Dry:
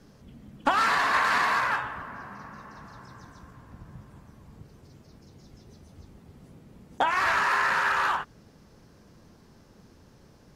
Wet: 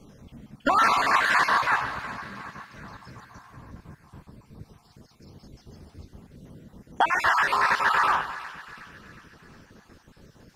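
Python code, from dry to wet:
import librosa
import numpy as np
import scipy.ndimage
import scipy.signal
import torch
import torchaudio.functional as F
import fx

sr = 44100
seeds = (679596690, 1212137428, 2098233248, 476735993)

y = fx.spec_dropout(x, sr, seeds[0], share_pct=38)
y = fx.echo_split(y, sr, split_hz=1500.0, low_ms=147, high_ms=364, feedback_pct=52, wet_db=-13.0)
y = F.gain(torch.from_numpy(y), 4.0).numpy()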